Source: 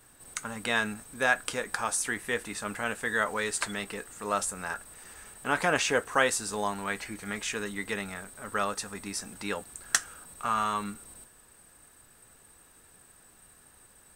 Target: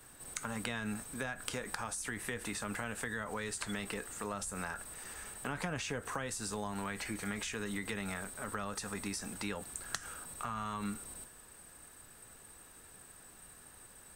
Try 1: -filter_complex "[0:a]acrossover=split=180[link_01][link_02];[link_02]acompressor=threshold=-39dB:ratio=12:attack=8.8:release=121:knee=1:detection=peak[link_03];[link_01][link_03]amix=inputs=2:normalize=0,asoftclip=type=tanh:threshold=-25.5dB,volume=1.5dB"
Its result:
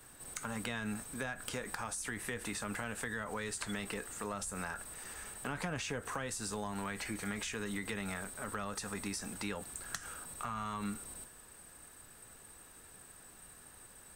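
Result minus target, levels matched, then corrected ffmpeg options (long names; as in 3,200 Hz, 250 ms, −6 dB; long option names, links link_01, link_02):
soft clipping: distortion +10 dB
-filter_complex "[0:a]acrossover=split=180[link_01][link_02];[link_02]acompressor=threshold=-39dB:ratio=12:attack=8.8:release=121:knee=1:detection=peak[link_03];[link_01][link_03]amix=inputs=2:normalize=0,asoftclip=type=tanh:threshold=-15dB,volume=1.5dB"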